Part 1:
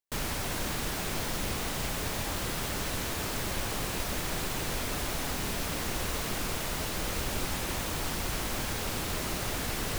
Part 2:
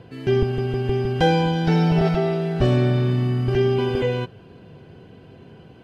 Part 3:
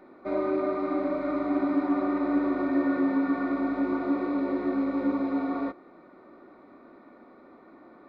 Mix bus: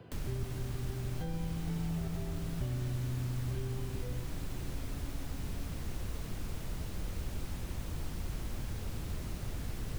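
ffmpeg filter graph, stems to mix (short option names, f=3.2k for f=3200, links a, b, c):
-filter_complex "[0:a]volume=1.5dB[a];[1:a]volume=-8.5dB[b];[2:a]volume=-13.5dB[c];[a][b][c]amix=inputs=3:normalize=0,acrossover=split=150|450[d][e][f];[d]acompressor=threshold=-33dB:ratio=4[g];[e]acompressor=threshold=-52dB:ratio=4[h];[f]acompressor=threshold=-53dB:ratio=4[i];[g][h][i]amix=inputs=3:normalize=0"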